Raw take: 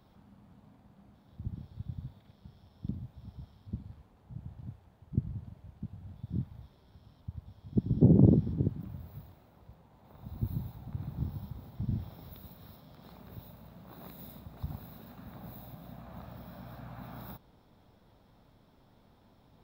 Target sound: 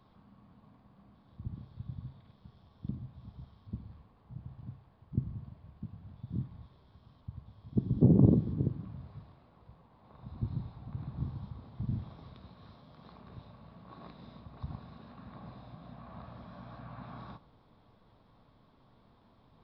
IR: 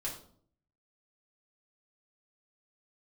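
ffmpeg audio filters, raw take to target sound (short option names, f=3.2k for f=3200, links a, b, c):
-filter_complex "[0:a]equalizer=f=1.1k:w=7.3:g=9,asplit=2[a][b];[1:a]atrim=start_sample=2205[c];[b][c]afir=irnorm=-1:irlink=0,volume=-11.5dB[d];[a][d]amix=inputs=2:normalize=0,aresample=11025,aresample=44100,volume=-3dB"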